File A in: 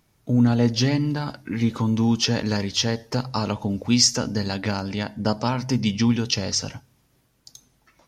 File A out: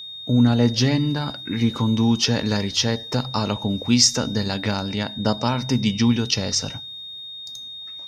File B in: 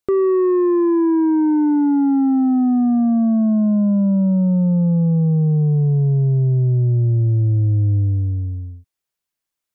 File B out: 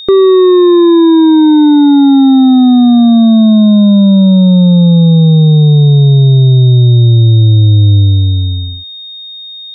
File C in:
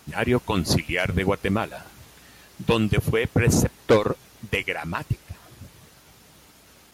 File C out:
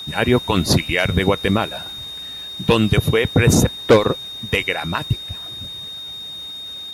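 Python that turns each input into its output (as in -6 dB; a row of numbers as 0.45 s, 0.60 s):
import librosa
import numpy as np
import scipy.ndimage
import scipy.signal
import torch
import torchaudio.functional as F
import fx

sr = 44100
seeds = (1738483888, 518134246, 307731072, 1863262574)

y = x + 10.0 ** (-35.0 / 20.0) * np.sin(2.0 * np.pi * 3700.0 * np.arange(len(x)) / sr)
y = y * 10.0 ** (-2 / 20.0) / np.max(np.abs(y))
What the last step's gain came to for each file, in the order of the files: +1.5 dB, +10.5 dB, +5.5 dB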